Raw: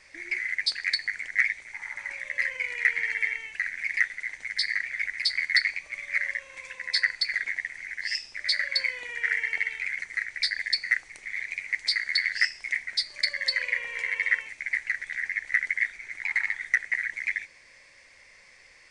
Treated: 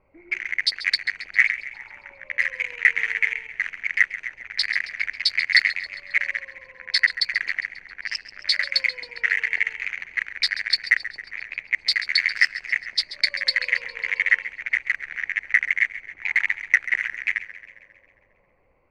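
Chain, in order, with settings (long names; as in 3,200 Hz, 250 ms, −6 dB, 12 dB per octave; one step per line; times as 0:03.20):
adaptive Wiener filter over 25 samples
low-pass that shuts in the quiet parts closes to 1,600 Hz, open at −27.5 dBFS
dynamic equaliser 2,800 Hz, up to +6 dB, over −41 dBFS, Q 1.1
feedback echo with a swinging delay time 135 ms, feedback 59%, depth 64 cents, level −14.5 dB
level +3 dB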